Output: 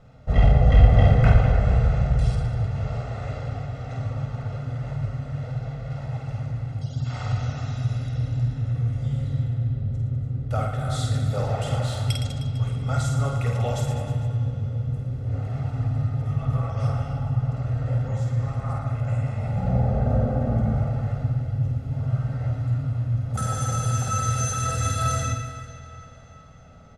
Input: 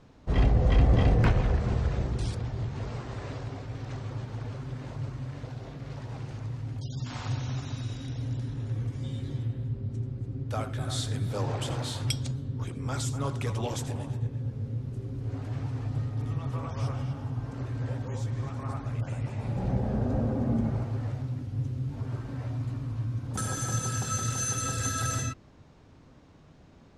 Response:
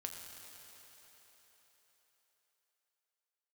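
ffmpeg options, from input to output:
-filter_complex "[0:a]aecho=1:1:1.5:0.81,aecho=1:1:50|115|199.5|309.4|452.2:0.631|0.398|0.251|0.158|0.1,asplit=2[link_01][link_02];[1:a]atrim=start_sample=2205,lowpass=3000[link_03];[link_02][link_03]afir=irnorm=-1:irlink=0,volume=1dB[link_04];[link_01][link_04]amix=inputs=2:normalize=0,volume=-3.5dB"

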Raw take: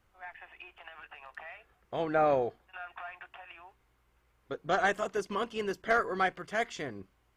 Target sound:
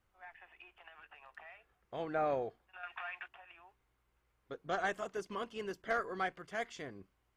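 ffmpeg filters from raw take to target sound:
ffmpeg -i in.wav -filter_complex "[0:a]asettb=1/sr,asplit=3[link_01][link_02][link_03];[link_01]atrim=end=2.834[link_04];[link_02]atrim=start=2.83:end=3.28,asetpts=PTS-STARTPTS,afade=type=in:duration=0.004:curve=qsin,afade=type=out:start_time=0.446:duration=0.004:curve=qsin,equalizer=frequency=2500:width_type=o:width=2.4:gain=11.5[link_05];[link_03]atrim=start=3.276[link_06];[link_04][link_05]acrossfade=duration=0.004:curve1=hsin:curve2=qsin[link_07];[link_07][link_06]acrossfade=duration=0.004:curve1=qsin:curve2=hsin,volume=-7.5dB" out.wav

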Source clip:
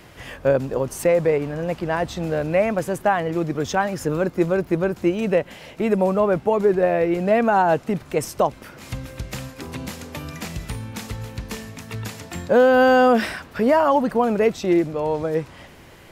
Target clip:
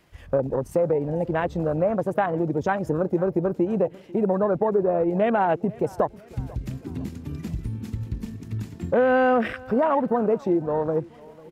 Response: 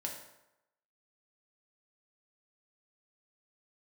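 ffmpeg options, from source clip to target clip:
-af "afwtdn=0.0501,acompressor=threshold=-25dB:ratio=2,atempo=1.4,aecho=1:1:495|990|1485:0.075|0.036|0.0173,volume=2.5dB"

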